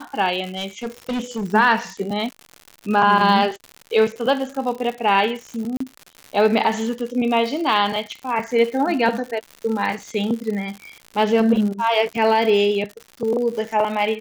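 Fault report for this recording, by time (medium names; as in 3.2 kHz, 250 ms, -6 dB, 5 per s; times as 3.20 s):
crackle 140 per s -28 dBFS
0.55–1.45 s: clipped -21 dBFS
5.77–5.80 s: dropout 34 ms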